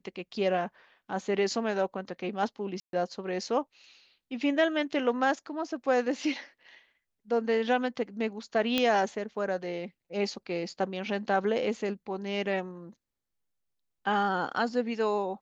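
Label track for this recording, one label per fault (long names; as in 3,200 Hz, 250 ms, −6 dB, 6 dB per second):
2.800000	2.930000	drop-out 132 ms
8.780000	8.780000	click −12 dBFS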